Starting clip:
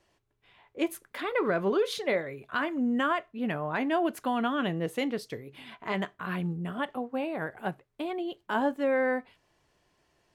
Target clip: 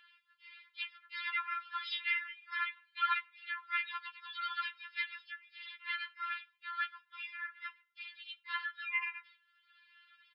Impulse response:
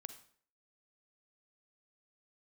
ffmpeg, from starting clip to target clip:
-filter_complex "[0:a]asplit=2[a][b];[1:a]atrim=start_sample=2205,highshelf=f=3.3k:g=-6.5[c];[b][c]afir=irnorm=-1:irlink=0,volume=-6.5dB[d];[a][d]amix=inputs=2:normalize=0,acompressor=mode=upward:threshold=-45dB:ratio=2.5,afftfilt=real='re*between(b*sr/4096,1100,4000)':imag='im*between(b*sr/4096,1100,4000)':win_size=4096:overlap=0.75,asplit=3[e][f][g];[f]asetrate=35002,aresample=44100,atempo=1.25992,volume=-9dB[h];[g]asetrate=58866,aresample=44100,atempo=0.749154,volume=-8dB[i];[e][h][i]amix=inputs=3:normalize=0,afftfilt=real='re*4*eq(mod(b,16),0)':imag='im*4*eq(mod(b,16),0)':win_size=2048:overlap=0.75"

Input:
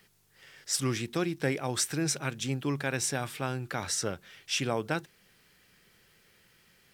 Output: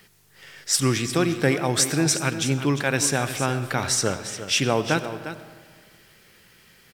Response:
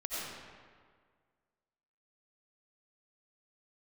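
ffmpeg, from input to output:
-filter_complex "[0:a]aecho=1:1:353:0.266,asplit=2[a][b];[1:a]atrim=start_sample=2205[c];[b][c]afir=irnorm=-1:irlink=0,volume=-15dB[d];[a][d]amix=inputs=2:normalize=0,volume=7.5dB"

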